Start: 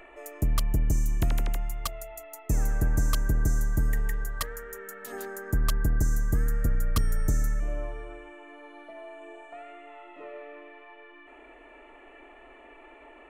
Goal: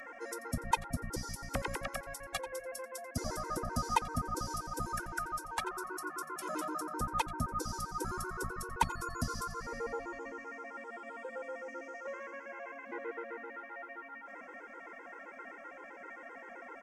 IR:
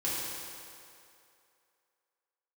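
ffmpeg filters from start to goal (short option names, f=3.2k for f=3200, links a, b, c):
-filter_complex "[0:a]highpass=f=1.2k:p=1,acrossover=split=2700[a][b];[b]acompressor=threshold=-52dB:ratio=5[c];[a][c]amix=inputs=2:normalize=0,asetrate=34839,aresample=44100,aecho=1:1:88:0.141,afftfilt=real='re*gt(sin(2*PI*7.7*pts/sr)*(1-2*mod(floor(b*sr/1024/270),2)),0)':imag='im*gt(sin(2*PI*7.7*pts/sr)*(1-2*mod(floor(b*sr/1024/270),2)),0)':win_size=1024:overlap=0.75,volume=10.5dB"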